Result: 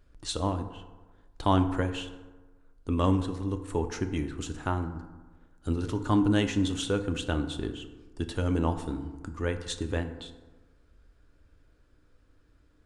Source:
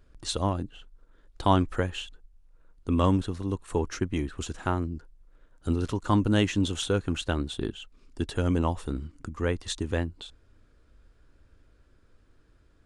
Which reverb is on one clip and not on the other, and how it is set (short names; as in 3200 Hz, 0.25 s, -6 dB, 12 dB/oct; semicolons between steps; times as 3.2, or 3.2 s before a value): FDN reverb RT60 1.3 s, low-frequency decay 1×, high-frequency decay 0.45×, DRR 7.5 dB; gain -2.5 dB